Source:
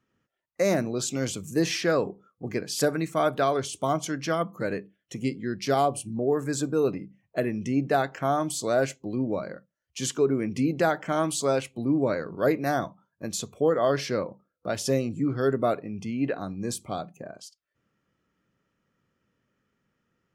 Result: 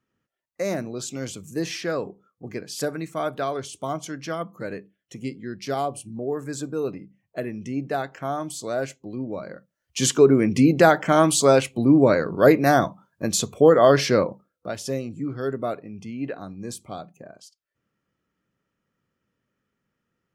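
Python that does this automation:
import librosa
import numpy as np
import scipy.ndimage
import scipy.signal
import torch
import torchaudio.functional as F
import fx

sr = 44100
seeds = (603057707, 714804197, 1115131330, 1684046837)

y = fx.gain(x, sr, db=fx.line((9.33, -3.0), (10.0, 8.5), (14.24, 8.5), (14.78, -3.0)))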